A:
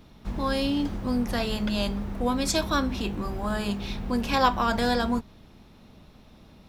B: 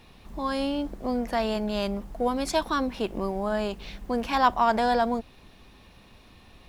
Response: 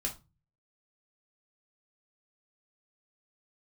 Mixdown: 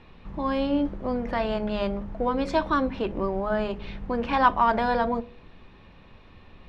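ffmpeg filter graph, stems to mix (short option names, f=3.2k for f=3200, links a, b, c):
-filter_complex "[0:a]volume=-9.5dB[a];[1:a]bandreject=f=69:t=h:w=4,bandreject=f=138:t=h:w=4,bandreject=f=207:t=h:w=4,bandreject=f=276:t=h:w=4,bandreject=f=345:t=h:w=4,bandreject=f=414:t=h:w=4,bandreject=f=483:t=h:w=4,bandreject=f=552:t=h:w=4,bandreject=f=621:t=h:w=4,bandreject=f=690:t=h:w=4,volume=1dB,asplit=2[b][c];[c]volume=-14dB[d];[2:a]atrim=start_sample=2205[e];[d][e]afir=irnorm=-1:irlink=0[f];[a][b][f]amix=inputs=3:normalize=0,lowpass=2.6k,equalizer=f=710:t=o:w=0.21:g=-4.5"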